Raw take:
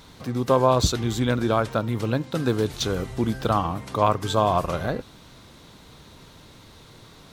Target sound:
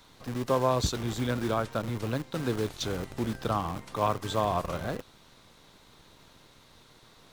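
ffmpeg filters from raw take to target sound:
ffmpeg -i in.wav -filter_complex "[0:a]asettb=1/sr,asplit=3[link_01][link_02][link_03];[link_01]atrim=end=3.954[link_04];[link_02]atrim=start=3.95:end=4.45,asetpts=PTS-STARTPTS,afade=type=in:duration=0.004:curve=qsin,afade=type=out:start_time=0.496:duration=0.004:curve=qsin,highpass=frequency=76:width=0.5412,highpass=frequency=76:width=1.3066[link_05];[link_03]atrim=start=4.446[link_06];[link_04][link_05]acrossfade=duration=0.004:curve1=hsin:curve2=qsin[link_07];[link_07][link_06]acrossfade=duration=0.004:curve1=qsin:curve2=hsin,acrossover=split=510|1300[link_08][link_09][link_10];[link_08]acrusher=bits=6:dc=4:mix=0:aa=0.000001[link_11];[link_11][link_09][link_10]amix=inputs=3:normalize=0,volume=-7dB" out.wav

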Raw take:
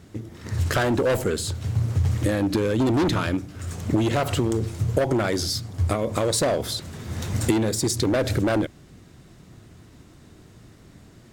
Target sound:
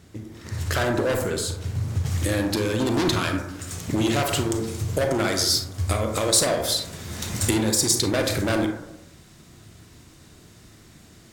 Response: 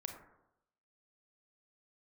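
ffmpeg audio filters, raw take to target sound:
-filter_complex "[0:a]asetnsamples=nb_out_samples=441:pad=0,asendcmd='2.06 highshelf g 11',highshelf=frequency=2000:gain=5[link_01];[1:a]atrim=start_sample=2205[link_02];[link_01][link_02]afir=irnorm=-1:irlink=0"

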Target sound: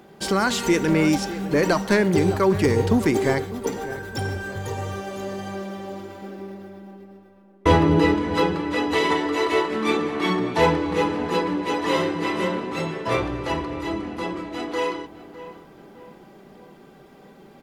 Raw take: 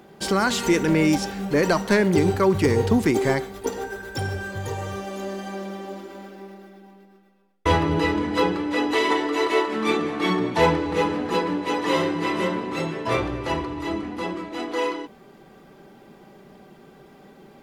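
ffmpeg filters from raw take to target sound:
ffmpeg -i in.wav -filter_complex "[0:a]asettb=1/sr,asplit=3[link_01][link_02][link_03];[link_01]atrim=end=6.224[link_04];[link_02]atrim=start=6.22:end=8.15,asetpts=PTS-STARTPTS,afade=type=in:duration=0.004:curve=qsin,afade=type=out:start_time=1.926:duration=0.004:curve=qsin,equalizer=frequency=240:width=0.43:gain=6[link_05];[link_03]atrim=start=8.146[link_06];[link_04][link_05]acrossfade=duration=0.004:curve1=hsin:curve2=qsin[link_07];[link_07][link_06]acrossfade=duration=0.004:curve1=qsin:curve2=hsin,asplit=2[link_08][link_09];[link_09]adelay=607,lowpass=frequency=1900:poles=1,volume=-14dB,asplit=2[link_10][link_11];[link_11]adelay=607,lowpass=frequency=1900:poles=1,volume=0.47,asplit=2[link_12][link_13];[link_13]adelay=607,lowpass=frequency=1900:poles=1,volume=0.47,asplit=2[link_14][link_15];[link_15]adelay=607,lowpass=frequency=1900:poles=1,volume=0.47[link_16];[link_10][link_12][link_14][link_16]amix=inputs=4:normalize=0[link_17];[link_08][link_17]amix=inputs=2:normalize=0" out.wav

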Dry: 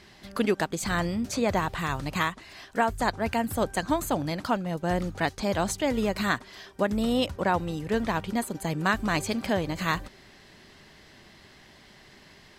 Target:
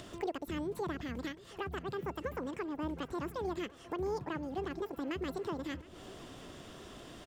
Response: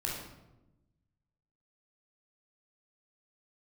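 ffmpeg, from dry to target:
-filter_complex "[0:a]acompressor=mode=upward:threshold=-27dB:ratio=2.5,highshelf=frequency=2200:gain=-11,asetrate=76440,aresample=44100,acrossover=split=490[link_01][link_02];[link_02]acompressor=threshold=-50dB:ratio=1.5[link_03];[link_01][link_03]amix=inputs=2:normalize=0,asplit=2[link_04][link_05];[link_05]aecho=0:1:716|1432|2148|2864|3580:0.1|0.059|0.0348|0.0205|0.0121[link_06];[link_04][link_06]amix=inputs=2:normalize=0,volume=-6.5dB"

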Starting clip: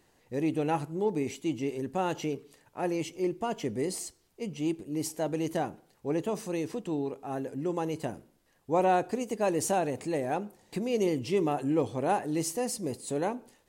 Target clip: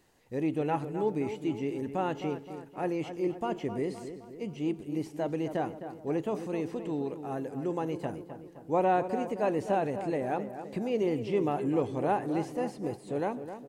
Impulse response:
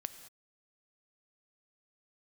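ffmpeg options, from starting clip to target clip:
-filter_complex "[0:a]acrossover=split=3100[link_01][link_02];[link_02]acompressor=threshold=-58dB:ratio=4:attack=1:release=60[link_03];[link_01][link_03]amix=inputs=2:normalize=0,asplit=2[link_04][link_05];[link_05]adelay=260,lowpass=frequency=2300:poles=1,volume=-10dB,asplit=2[link_06][link_07];[link_07]adelay=260,lowpass=frequency=2300:poles=1,volume=0.54,asplit=2[link_08][link_09];[link_09]adelay=260,lowpass=frequency=2300:poles=1,volume=0.54,asplit=2[link_10][link_11];[link_11]adelay=260,lowpass=frequency=2300:poles=1,volume=0.54,asplit=2[link_12][link_13];[link_13]adelay=260,lowpass=frequency=2300:poles=1,volume=0.54,asplit=2[link_14][link_15];[link_15]adelay=260,lowpass=frequency=2300:poles=1,volume=0.54[link_16];[link_04][link_06][link_08][link_10][link_12][link_14][link_16]amix=inputs=7:normalize=0,volume=-1dB"

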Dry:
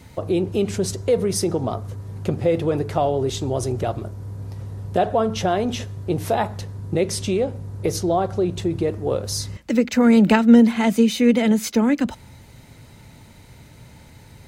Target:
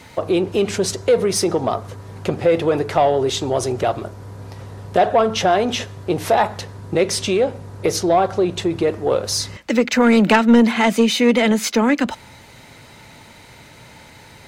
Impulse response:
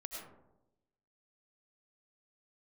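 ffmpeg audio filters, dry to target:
-filter_complex "[0:a]asplit=2[link_01][link_02];[link_02]highpass=frequency=720:poles=1,volume=15dB,asoftclip=type=tanh:threshold=-3dB[link_03];[link_01][link_03]amix=inputs=2:normalize=0,lowpass=frequency=4500:poles=1,volume=-6dB"

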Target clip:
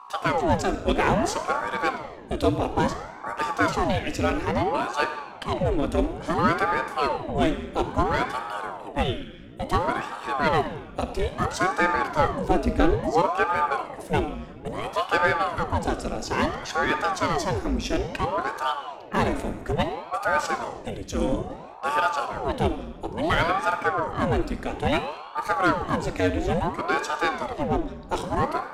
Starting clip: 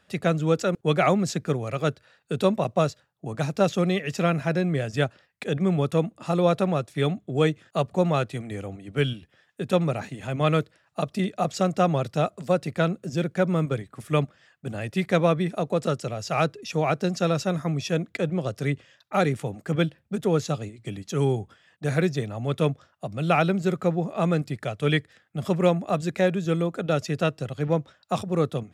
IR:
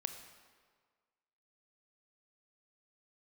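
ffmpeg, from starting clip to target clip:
-filter_complex "[0:a]asplit=2[link_01][link_02];[link_02]aeval=exprs='0.0596*(abs(mod(val(0)/0.0596+3,4)-2)-1)':channel_layout=same,volume=-11dB[link_03];[link_01][link_03]amix=inputs=2:normalize=0,asettb=1/sr,asplit=3[link_04][link_05][link_06];[link_04]atrim=end=12.194[link_07];[link_05]atrim=start=12.19:end=13.28,asetpts=PTS-STARTPTS,afade=type=in:duration=0.004:curve=qsin,afade=type=out:start_time=1.086:duration=0.004:curve=qsin,lowshelf=frequency=280:gain=9.5[link_08];[link_06]atrim=start=13.276[link_09];[link_07][link_08]acrossfade=duration=0.004:curve1=hsin:curve2=qsin[link_10];[link_10][link_09]acrossfade=duration=0.004:curve1=qsin:curve2=hsin[link_11];[1:a]atrim=start_sample=2205,asetrate=52920,aresample=44100[link_12];[link_11][link_12]afir=irnorm=-1:irlink=0,aeval=exprs='val(0)+0.00562*(sin(2*PI*60*n/s)+sin(2*PI*2*60*n/s)/2+sin(2*PI*3*60*n/s)/3+sin(2*PI*4*60*n/s)/4+sin(2*PI*5*60*n/s)/5)':channel_layout=same,aeval=exprs='val(0)*sin(2*PI*570*n/s+570*0.85/0.59*sin(2*PI*0.59*n/s))':channel_layout=same,volume=4.5dB"

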